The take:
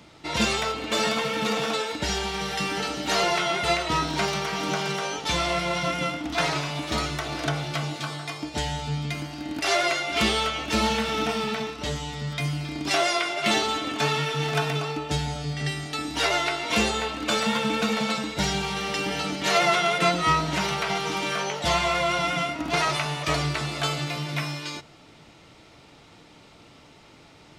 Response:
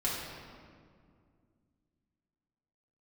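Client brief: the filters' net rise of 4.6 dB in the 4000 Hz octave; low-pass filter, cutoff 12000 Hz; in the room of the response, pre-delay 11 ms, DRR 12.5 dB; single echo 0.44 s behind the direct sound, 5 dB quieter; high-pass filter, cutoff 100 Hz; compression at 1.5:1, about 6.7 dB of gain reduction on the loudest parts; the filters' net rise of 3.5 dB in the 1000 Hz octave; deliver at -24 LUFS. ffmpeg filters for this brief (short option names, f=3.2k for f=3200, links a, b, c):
-filter_complex "[0:a]highpass=100,lowpass=12k,equalizer=f=1k:t=o:g=4.5,equalizer=f=4k:t=o:g=5.5,acompressor=threshold=-34dB:ratio=1.5,aecho=1:1:440:0.562,asplit=2[a][b];[1:a]atrim=start_sample=2205,adelay=11[c];[b][c]afir=irnorm=-1:irlink=0,volume=-19dB[d];[a][d]amix=inputs=2:normalize=0,volume=2.5dB"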